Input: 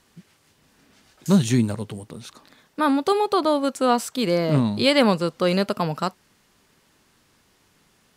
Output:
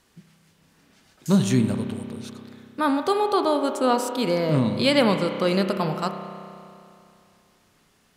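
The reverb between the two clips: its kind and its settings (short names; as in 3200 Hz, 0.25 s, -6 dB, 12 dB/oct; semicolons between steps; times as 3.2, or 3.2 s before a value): spring tank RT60 2.6 s, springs 31 ms, chirp 80 ms, DRR 6.5 dB; gain -2 dB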